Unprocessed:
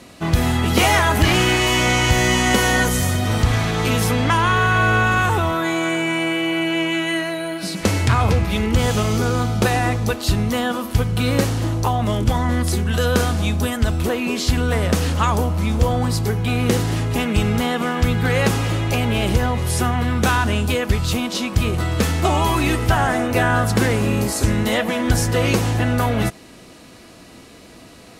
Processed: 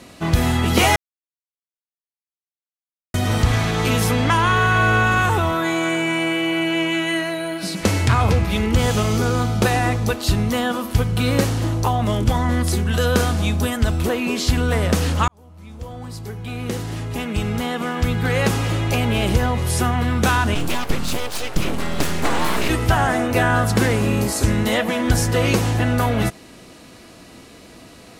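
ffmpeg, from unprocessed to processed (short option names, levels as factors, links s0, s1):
-filter_complex "[0:a]asplit=3[s0][s1][s2];[s0]afade=t=out:st=20.54:d=0.02[s3];[s1]aeval=exprs='abs(val(0))':c=same,afade=t=in:st=20.54:d=0.02,afade=t=out:st=22.68:d=0.02[s4];[s2]afade=t=in:st=22.68:d=0.02[s5];[s3][s4][s5]amix=inputs=3:normalize=0,asplit=4[s6][s7][s8][s9];[s6]atrim=end=0.96,asetpts=PTS-STARTPTS,afade=t=out:st=0.956:d=0.004:c=hsin[s10];[s7]atrim=start=0.96:end=3.14,asetpts=PTS-STARTPTS,volume=0[s11];[s8]atrim=start=3.14:end=15.28,asetpts=PTS-STARTPTS,afade=t=in:d=0.004:c=hsin,afade=t=out:st=12.136:d=0.004:c=hsin[s12];[s9]atrim=start=15.28,asetpts=PTS-STARTPTS,afade=t=in:d=3.59[s13];[s10][s11][s12][s13]concat=n=4:v=0:a=1"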